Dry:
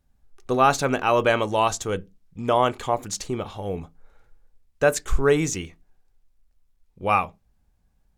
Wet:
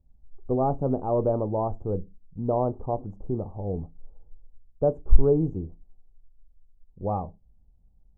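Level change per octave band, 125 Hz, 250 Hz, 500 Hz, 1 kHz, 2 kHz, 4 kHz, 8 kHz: +2.5 dB, -0.5 dB, -3.0 dB, -9.5 dB, under -35 dB, under -40 dB, under -40 dB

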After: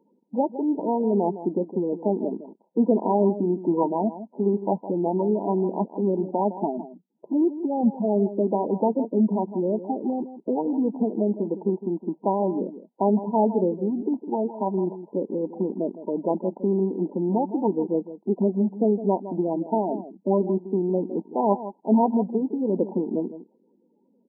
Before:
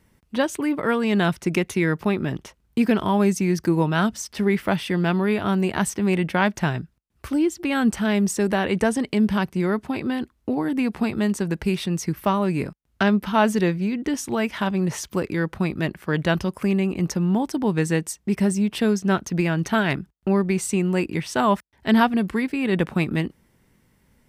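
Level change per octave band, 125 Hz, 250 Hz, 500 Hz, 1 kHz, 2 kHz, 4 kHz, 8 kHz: -7.5 dB, -2.5 dB, +1.5 dB, -1.0 dB, under -40 dB, under -40 dB, under -40 dB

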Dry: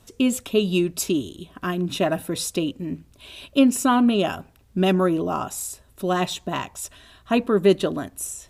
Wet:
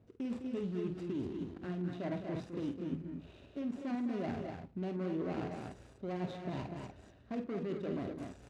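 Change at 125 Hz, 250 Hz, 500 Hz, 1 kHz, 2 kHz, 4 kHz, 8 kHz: -12.0 dB, -15.5 dB, -17.5 dB, -20.0 dB, -20.0 dB, -26.0 dB, under -35 dB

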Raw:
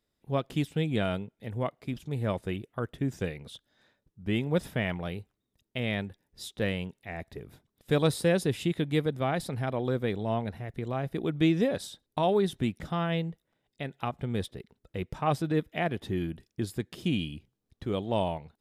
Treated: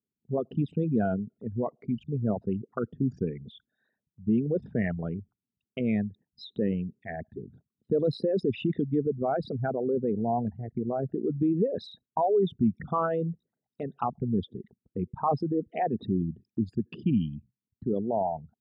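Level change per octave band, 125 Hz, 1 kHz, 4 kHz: -0.5 dB, +2.5 dB, -9.5 dB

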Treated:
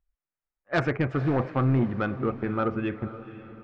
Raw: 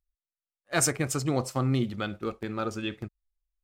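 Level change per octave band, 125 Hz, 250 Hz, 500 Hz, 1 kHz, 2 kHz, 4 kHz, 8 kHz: +4.0 dB, +4.0 dB, +3.5 dB, +3.5 dB, +2.5 dB, -8.5 dB, under -30 dB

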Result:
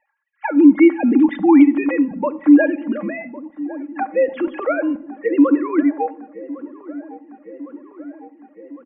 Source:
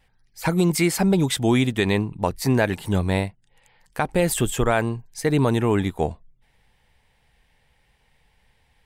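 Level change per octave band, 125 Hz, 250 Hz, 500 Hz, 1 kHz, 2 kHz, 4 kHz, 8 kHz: under -20 dB, +9.5 dB, +3.0 dB, +2.5 dB, +1.0 dB, under -15 dB, under -40 dB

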